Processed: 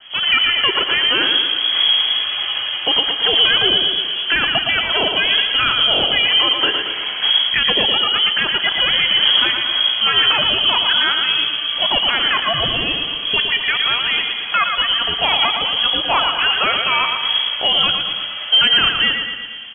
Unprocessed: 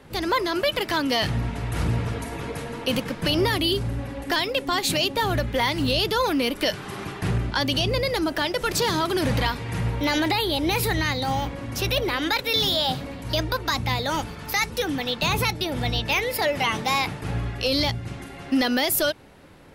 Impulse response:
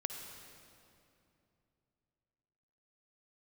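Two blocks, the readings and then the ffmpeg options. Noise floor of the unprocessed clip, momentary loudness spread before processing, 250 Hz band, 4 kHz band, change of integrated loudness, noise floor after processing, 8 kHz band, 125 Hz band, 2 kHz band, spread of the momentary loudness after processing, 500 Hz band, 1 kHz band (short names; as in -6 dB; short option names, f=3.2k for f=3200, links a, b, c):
-39 dBFS, 8 LU, -6.5 dB, +15.0 dB, +9.5 dB, -26 dBFS, under -40 dB, -10.5 dB, +9.5 dB, 6 LU, -2.0 dB, +4.5 dB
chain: -filter_complex "[0:a]adynamicequalizer=threshold=0.01:dfrequency=810:dqfactor=1.4:tfrequency=810:tqfactor=1.4:attack=5:release=100:ratio=0.375:range=3.5:mode=cutabove:tftype=bell,aecho=1:1:115|230|345|460|575|690|805:0.501|0.266|0.141|0.0746|0.0395|0.021|0.0111,asplit=2[a][b];[1:a]atrim=start_sample=2205[c];[b][c]afir=irnorm=-1:irlink=0,volume=-3.5dB[d];[a][d]amix=inputs=2:normalize=0,lowpass=f=2.9k:t=q:w=0.5098,lowpass=f=2.9k:t=q:w=0.6013,lowpass=f=2.9k:t=q:w=0.9,lowpass=f=2.9k:t=q:w=2.563,afreqshift=-3400,volume=4dB"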